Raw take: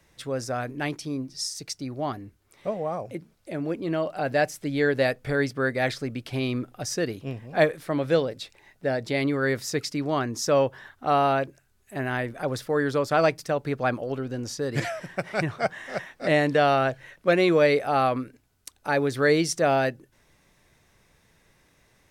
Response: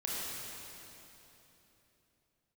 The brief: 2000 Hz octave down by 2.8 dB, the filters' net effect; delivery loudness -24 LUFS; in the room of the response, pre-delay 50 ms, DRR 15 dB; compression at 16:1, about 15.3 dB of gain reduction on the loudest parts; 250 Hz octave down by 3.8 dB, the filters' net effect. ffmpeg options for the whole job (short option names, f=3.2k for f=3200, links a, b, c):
-filter_complex "[0:a]equalizer=f=250:t=o:g=-5,equalizer=f=2k:t=o:g=-3.5,acompressor=threshold=-32dB:ratio=16,asplit=2[a][b];[1:a]atrim=start_sample=2205,adelay=50[c];[b][c]afir=irnorm=-1:irlink=0,volume=-19.5dB[d];[a][d]amix=inputs=2:normalize=0,volume=13.5dB"